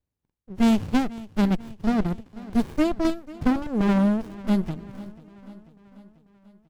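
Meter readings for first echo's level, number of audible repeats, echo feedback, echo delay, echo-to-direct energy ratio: -19.0 dB, 4, 58%, 491 ms, -17.0 dB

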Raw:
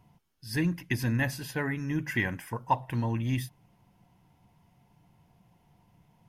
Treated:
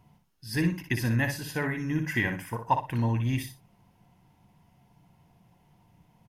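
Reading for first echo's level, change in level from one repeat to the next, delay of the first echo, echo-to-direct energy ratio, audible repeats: -7.0 dB, -13.0 dB, 60 ms, -7.0 dB, 2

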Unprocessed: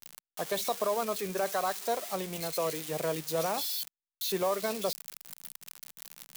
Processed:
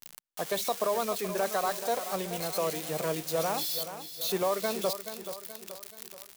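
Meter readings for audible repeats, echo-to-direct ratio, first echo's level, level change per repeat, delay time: 4, -10.0 dB, -11.0 dB, -6.0 dB, 428 ms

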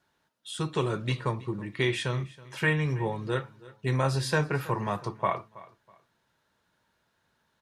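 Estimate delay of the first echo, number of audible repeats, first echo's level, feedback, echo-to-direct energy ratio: 324 ms, 2, -20.0 dB, 27%, -19.5 dB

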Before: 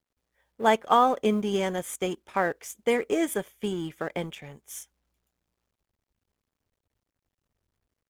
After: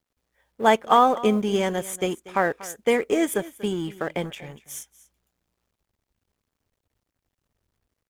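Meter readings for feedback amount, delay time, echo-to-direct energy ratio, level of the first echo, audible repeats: no regular repeats, 239 ms, -18.5 dB, -18.5 dB, 1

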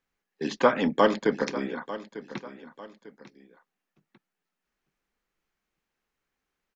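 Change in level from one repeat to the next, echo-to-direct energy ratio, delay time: -8.5 dB, -14.5 dB, 897 ms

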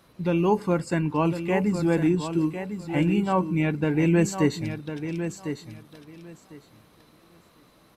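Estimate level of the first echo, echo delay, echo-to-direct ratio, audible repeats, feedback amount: -9.0 dB, 1052 ms, -9.0 dB, 2, 18%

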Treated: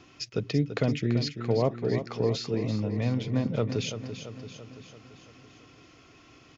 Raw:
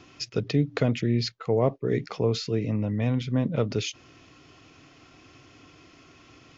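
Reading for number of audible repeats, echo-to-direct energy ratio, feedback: 6, -8.0 dB, 58%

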